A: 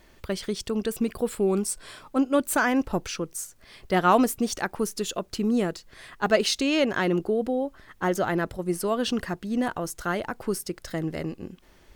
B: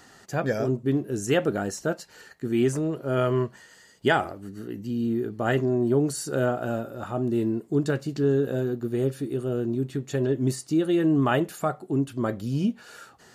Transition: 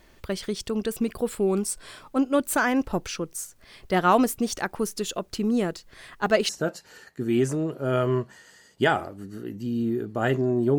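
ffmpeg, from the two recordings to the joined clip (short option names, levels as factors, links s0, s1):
-filter_complex "[0:a]apad=whole_dur=10.78,atrim=end=10.78,atrim=end=6.492[s0];[1:a]atrim=start=1.728:end=6.02[s1];[s0][s1]acrossfade=d=0.004:c1=hsin:c2=hsin"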